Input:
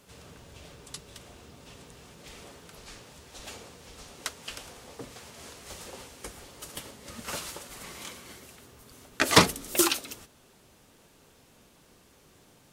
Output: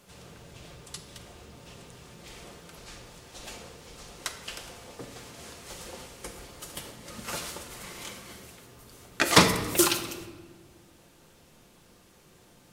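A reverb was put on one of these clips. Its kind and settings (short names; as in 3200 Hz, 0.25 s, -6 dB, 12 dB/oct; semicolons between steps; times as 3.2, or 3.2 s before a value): shoebox room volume 1100 m³, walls mixed, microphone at 0.86 m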